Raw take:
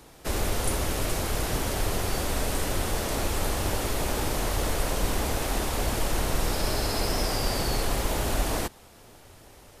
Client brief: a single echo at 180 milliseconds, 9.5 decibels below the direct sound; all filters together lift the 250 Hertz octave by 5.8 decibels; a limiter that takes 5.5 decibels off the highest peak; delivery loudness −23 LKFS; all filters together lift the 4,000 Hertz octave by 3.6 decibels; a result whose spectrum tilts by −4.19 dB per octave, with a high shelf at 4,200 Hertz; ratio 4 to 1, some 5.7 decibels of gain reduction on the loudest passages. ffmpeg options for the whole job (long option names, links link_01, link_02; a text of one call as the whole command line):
ffmpeg -i in.wav -af "equalizer=frequency=250:width_type=o:gain=7.5,equalizer=frequency=4000:width_type=o:gain=7.5,highshelf=frequency=4200:gain=-5,acompressor=threshold=-27dB:ratio=4,alimiter=limit=-22.5dB:level=0:latency=1,aecho=1:1:180:0.335,volume=10dB" out.wav